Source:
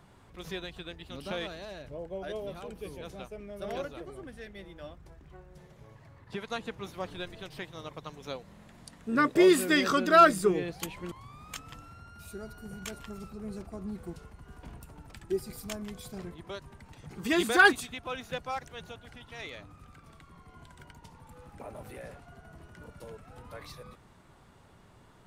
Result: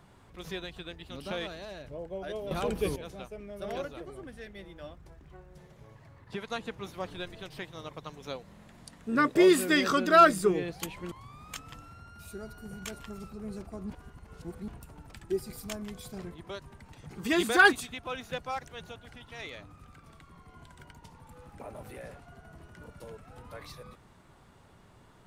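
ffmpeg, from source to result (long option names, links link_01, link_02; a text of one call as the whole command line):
ffmpeg -i in.wav -filter_complex "[0:a]asplit=5[link_01][link_02][link_03][link_04][link_05];[link_01]atrim=end=2.512[link_06];[link_02]atrim=start=2.508:end=2.962,asetpts=PTS-STARTPTS,volume=11.5dB[link_07];[link_03]atrim=start=2.958:end=13.902[link_08];[link_04]atrim=start=13.898:end=14.682,asetpts=PTS-STARTPTS,areverse[link_09];[link_05]atrim=start=14.678[link_10];[link_06][link_07]acrossfade=duration=0.004:curve1=hsin:curve2=hsin[link_11];[link_11][link_08]acrossfade=duration=0.004:curve1=hsin:curve2=hsin[link_12];[link_12][link_09]acrossfade=duration=0.004:curve1=hsin:curve2=hsin[link_13];[link_13][link_10]acrossfade=duration=0.004:curve1=hsin:curve2=hsin" out.wav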